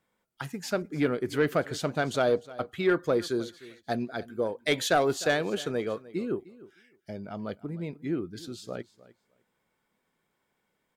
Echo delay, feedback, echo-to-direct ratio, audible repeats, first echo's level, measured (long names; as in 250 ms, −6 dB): 304 ms, 16%, −19.0 dB, 2, −19.0 dB